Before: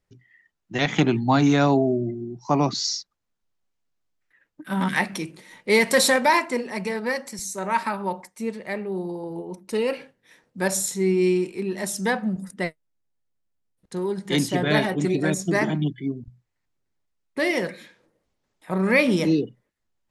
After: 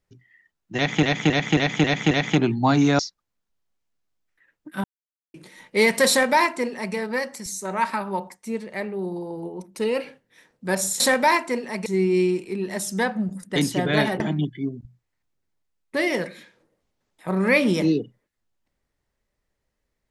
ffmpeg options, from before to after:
-filter_complex "[0:a]asplit=13[s0][s1][s2][s3][s4][s5][s6][s7][s8][s9][s10][s11][s12];[s0]atrim=end=1.032[s13];[s1]atrim=start=0.758:end=1.032[s14];[s2]atrim=start=0.758:end=1.032[s15];[s3]atrim=start=0.758:end=1.032[s16];[s4]atrim=start=0.758:end=1.032[s17];[s5]atrim=start=0.758:end=1.642[s18];[s6]atrim=start=2.918:end=4.77,asetpts=PTS-STARTPTS,afade=t=out:st=1.848:d=0.004:c=hsin[s19];[s7]atrim=start=4.77:end=5.27,asetpts=PTS-STARTPTS,volume=0[s20];[s8]atrim=start=5.27:end=10.932,asetpts=PTS-STARTPTS,afade=t=in:d=0.004:c=hsin[s21];[s9]atrim=start=6.018:end=6.882[s22];[s10]atrim=start=10.928:end=12.632[s23];[s11]atrim=start=14.328:end=14.972[s24];[s12]atrim=start=15.628[s25];[s13][s14]acrossfade=d=0.004:c1=hsin:c2=hsin[s26];[s26][s15]acrossfade=d=0.004:c1=hsin:c2=hsin[s27];[s27][s16]acrossfade=d=0.004:c1=hsin:c2=hsin[s28];[s28][s17]acrossfade=d=0.004:c1=hsin:c2=hsin[s29];[s29][s18]acrossfade=d=0.004:c1=hsin:c2=hsin[s30];[s19][s20][s21]concat=n=3:v=0:a=1[s31];[s30][s31]acrossfade=d=0.004:c1=hsin:c2=hsin[s32];[s32][s22]acrossfade=d=0.004:c1=hsin:c2=hsin[s33];[s33][s23]acrossfade=d=0.004:c1=hsin:c2=hsin[s34];[s34][s24]acrossfade=d=0.004:c1=hsin:c2=hsin[s35];[s35][s25]acrossfade=d=0.004:c1=hsin:c2=hsin"

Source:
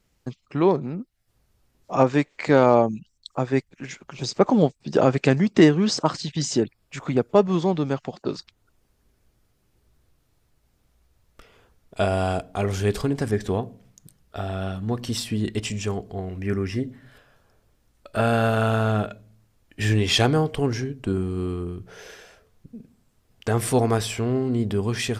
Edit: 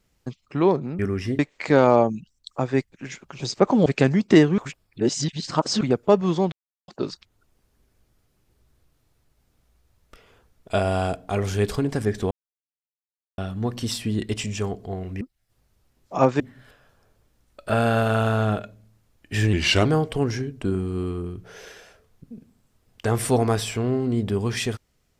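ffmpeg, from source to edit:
-filter_complex "[0:a]asplit=14[s0][s1][s2][s3][s4][s5][s6][s7][s8][s9][s10][s11][s12][s13];[s0]atrim=end=0.992[s14];[s1]atrim=start=16.468:end=16.872[s15];[s2]atrim=start=2.178:end=4.652[s16];[s3]atrim=start=5.118:end=5.842[s17];[s4]atrim=start=5.838:end=7.072,asetpts=PTS-STARTPTS,areverse[s18];[s5]atrim=start=7.068:end=7.78,asetpts=PTS-STARTPTS,afade=t=out:st=0.708:d=0.004:c=hsin[s19];[s6]atrim=start=7.78:end=8.14,asetpts=PTS-STARTPTS,volume=0[s20];[s7]atrim=start=8.14:end=13.57,asetpts=PTS-STARTPTS,afade=t=in:d=0.004:c=hsin,afade=t=out:st=5.426:d=0.004:c=hsin[s21];[s8]atrim=start=13.57:end=14.64,asetpts=PTS-STARTPTS,volume=0[s22];[s9]atrim=start=14.64:end=16.472,asetpts=PTS-STARTPTS,afade=t=in:d=0.004:c=hsin[s23];[s10]atrim=start=0.988:end=2.182[s24];[s11]atrim=start=16.868:end=20.004[s25];[s12]atrim=start=20:end=20.28,asetpts=PTS-STARTPTS,asetrate=37926,aresample=44100,atrim=end_sample=14358,asetpts=PTS-STARTPTS[s26];[s13]atrim=start=20.276[s27];[s14][s15]acrossfade=d=0.004:c1=hsin:c2=hsin[s28];[s28][s16]acrossfade=d=0.004:c1=hsin:c2=hsin[s29];[s29][s17]acrossfade=d=0.004:c1=hsin:c2=hsin[s30];[s30][s18]acrossfade=d=0.004:c1=hsin:c2=hsin[s31];[s19][s20][s21][s22][s23]concat=n=5:v=0:a=1[s32];[s31][s32]acrossfade=d=0.004:c1=hsin:c2=hsin[s33];[s33][s24]acrossfade=d=0.004:c1=hsin:c2=hsin[s34];[s34][s25]acrossfade=d=0.004:c1=hsin:c2=hsin[s35];[s35][s26]acrossfade=d=0.004:c1=hsin:c2=hsin[s36];[s36][s27]acrossfade=d=0.004:c1=hsin:c2=hsin"

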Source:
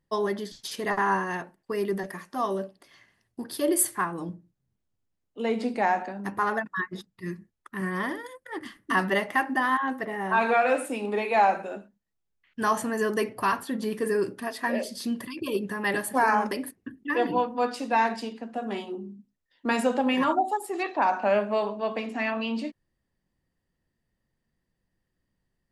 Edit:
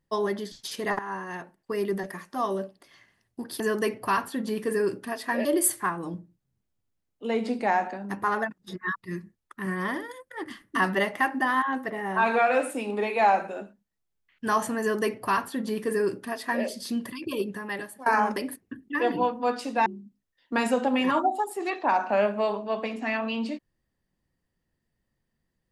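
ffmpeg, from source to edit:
-filter_complex "[0:a]asplit=8[s0][s1][s2][s3][s4][s5][s6][s7];[s0]atrim=end=0.99,asetpts=PTS-STARTPTS,afade=t=out:st=0.986:d=0.004:c=hsin:silence=0.188365[s8];[s1]atrim=start=0.99:end=3.602,asetpts=PTS-STARTPTS,afade=t=in:d=0.72:silence=0.188365[s9];[s2]atrim=start=12.948:end=14.802[s10];[s3]atrim=start=3.598:end=6.732[s11];[s4]atrim=start=6.728:end=7.112,asetpts=PTS-STARTPTS,areverse[s12];[s5]atrim=start=7.108:end=16.21,asetpts=PTS-STARTPTS,afade=t=out:st=8.362:d=0.74:silence=0.0749894[s13];[s6]atrim=start=16.21:end=18.012,asetpts=PTS-STARTPTS,afade=t=in:d=0.004:c=hsin:silence=0.0749894[s14];[s7]atrim=start=18.988[s15];[s8][s9]concat=n=2:v=0:a=1[s16];[s16][s10]acrossfade=d=0.004:c1=hsin:c2=hsin[s17];[s17][s11]acrossfade=d=0.004:c1=hsin:c2=hsin[s18];[s18][s12]acrossfade=d=0.004:c1=hsin:c2=hsin[s19];[s13][s14]concat=n=2:v=0:a=1[s20];[s19][s20]acrossfade=d=0.004:c1=hsin:c2=hsin[s21];[s21][s15]acrossfade=d=0.004:c1=hsin:c2=hsin"

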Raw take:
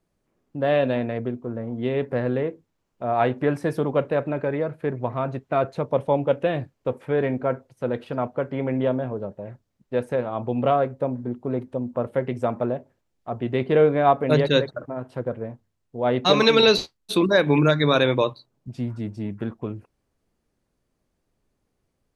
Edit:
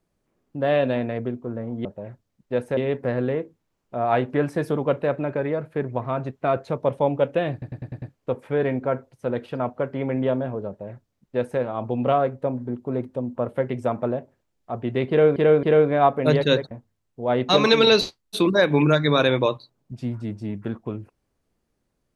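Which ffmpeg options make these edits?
-filter_complex "[0:a]asplit=11[s0][s1][s2][s3][s4][s5][s6][s7][s8][s9][s10];[s0]atrim=end=1.852[s11];[s1]atrim=start=9.258:end=10.182[s12];[s2]atrim=start=1.848:end=6.702[s13];[s3]atrim=start=6.598:end=6.702[s14];[s4]atrim=start=6.598:end=6.702[s15];[s5]atrim=start=6.598:end=6.702[s16];[s6]atrim=start=6.598:end=6.702[s17];[s7]atrim=start=6.598:end=13.942[s18];[s8]atrim=start=13.668:end=13.942[s19];[s9]atrim=start=13.668:end=14.752[s20];[s10]atrim=start=15.468[s21];[s11][s12]acrossfade=d=0.004:c1=hsin:c2=hsin[s22];[s22][s13]acrossfade=d=0.004:c1=hsin:c2=hsin[s23];[s23][s14]acrossfade=d=0.004:c1=hsin:c2=hsin[s24];[s24][s15]acrossfade=d=0.004:c1=hsin:c2=hsin[s25];[s25][s16]acrossfade=d=0.004:c1=hsin:c2=hsin[s26];[s26][s17]acrossfade=d=0.004:c1=hsin:c2=hsin[s27];[s27][s18]acrossfade=d=0.004:c1=hsin:c2=hsin[s28];[s28][s19]acrossfade=d=0.004:c1=hsin:c2=hsin[s29];[s29][s20]acrossfade=d=0.004:c1=hsin:c2=hsin[s30];[s30][s21]acrossfade=d=0.004:c1=hsin:c2=hsin"

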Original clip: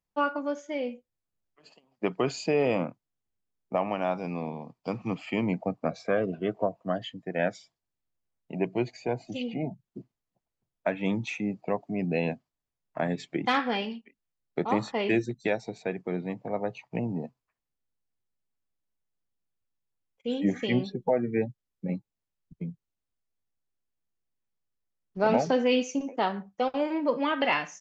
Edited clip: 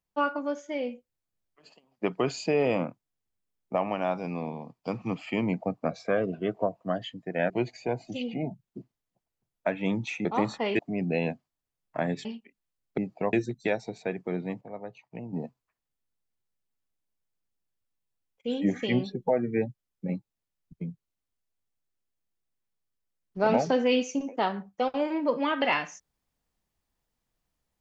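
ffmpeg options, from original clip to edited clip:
-filter_complex "[0:a]asplit=9[s0][s1][s2][s3][s4][s5][s6][s7][s8];[s0]atrim=end=7.502[s9];[s1]atrim=start=8.698:end=11.452[s10];[s2]atrim=start=14.588:end=15.132[s11];[s3]atrim=start=11.798:end=13.262[s12];[s4]atrim=start=13.858:end=14.592[s13];[s5]atrim=start=11.448:end=11.802[s14];[s6]atrim=start=15.128:end=16.412[s15];[s7]atrim=start=16.408:end=17.132,asetpts=PTS-STARTPTS,volume=0.355[s16];[s8]atrim=start=17.128[s17];[s9][s10]acrossfade=d=0.004:c1=hsin:c2=hsin[s18];[s18][s11]acrossfade=d=0.004:c1=hsin:c2=hsin[s19];[s19][s12]acrossfade=d=0.004:c1=hsin:c2=hsin[s20];[s20][s13]acrossfade=d=0.004:c1=hsin:c2=hsin[s21];[s21][s14]acrossfade=d=0.004:c1=hsin:c2=hsin[s22];[s22][s15]acrossfade=d=0.004:c1=hsin:c2=hsin[s23];[s23][s16]acrossfade=d=0.004:c1=hsin:c2=hsin[s24];[s24][s17]acrossfade=d=0.004:c1=hsin:c2=hsin"

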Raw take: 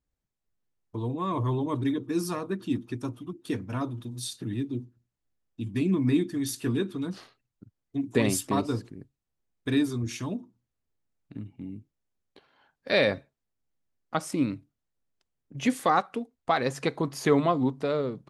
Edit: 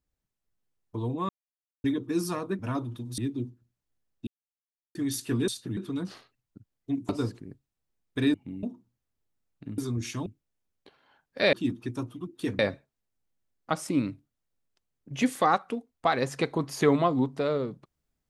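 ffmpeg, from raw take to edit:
-filter_complex "[0:a]asplit=16[s0][s1][s2][s3][s4][s5][s6][s7][s8][s9][s10][s11][s12][s13][s14][s15];[s0]atrim=end=1.29,asetpts=PTS-STARTPTS,afade=t=out:st=1.286:d=0.004:c=hsin[s16];[s1]atrim=start=1.29:end=1.84,asetpts=PTS-STARTPTS,volume=0[s17];[s2]atrim=start=1.84:end=2.592,asetpts=PTS-STARTPTS,afade=t=in:d=0.004:c=hsin[s18];[s3]atrim=start=3.648:end=4.242[s19];[s4]atrim=start=4.528:end=5.62,asetpts=PTS-STARTPTS,afade=t=out:st=1.088:d=0.004:c=hsin[s20];[s5]atrim=start=5.62:end=6.3,asetpts=PTS-STARTPTS,volume=0[s21];[s6]atrim=start=6.3:end=6.832,asetpts=PTS-STARTPTS,afade=t=in:d=0.004:c=hsin[s22];[s7]atrim=start=4.238:end=4.532[s23];[s8]atrim=start=6.828:end=8.152[s24];[s9]atrim=start=8.588:end=9.842[s25];[s10]atrim=start=11.468:end=11.762[s26];[s11]atrim=start=10.318:end=11.472[s27];[s12]atrim=start=9.838:end=10.322[s28];[s13]atrim=start=11.758:end=13.032[s29];[s14]atrim=start=2.588:end=3.652[s30];[s15]atrim=start=13.028[s31];[s16][s17][s18]concat=n=3:v=0:a=1[s32];[s32][s19]acrossfade=d=0.004:c1=hsin:c2=hsin[s33];[s20][s21][s22]concat=n=3:v=0:a=1[s34];[s33][s34]acrossfade=d=0.004:c1=hsin:c2=hsin[s35];[s35][s23]acrossfade=d=0.004:c1=hsin:c2=hsin[s36];[s36][s24]acrossfade=d=0.004:c1=hsin:c2=hsin[s37];[s37][s25]acrossfade=d=0.004:c1=hsin:c2=hsin[s38];[s38][s26]acrossfade=d=0.004:c1=hsin:c2=hsin[s39];[s39][s27]acrossfade=d=0.004:c1=hsin:c2=hsin[s40];[s40][s28]acrossfade=d=0.004:c1=hsin:c2=hsin[s41];[s41][s29]acrossfade=d=0.004:c1=hsin:c2=hsin[s42];[s42][s30]acrossfade=d=0.004:c1=hsin:c2=hsin[s43];[s43][s31]acrossfade=d=0.004:c1=hsin:c2=hsin"

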